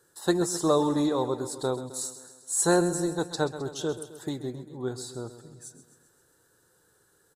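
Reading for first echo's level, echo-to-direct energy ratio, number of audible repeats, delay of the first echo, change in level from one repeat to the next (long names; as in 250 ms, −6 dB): −13.0 dB, −11.0 dB, 5, 131 ms, −4.5 dB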